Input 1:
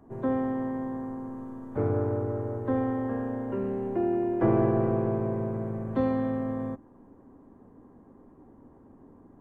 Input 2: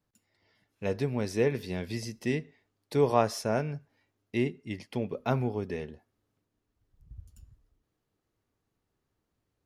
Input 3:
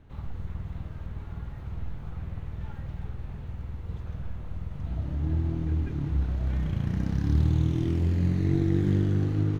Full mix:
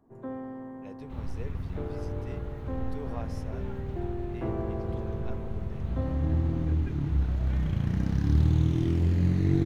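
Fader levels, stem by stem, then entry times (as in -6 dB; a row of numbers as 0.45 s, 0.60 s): -10.0 dB, -17.5 dB, +0.5 dB; 0.00 s, 0.00 s, 1.00 s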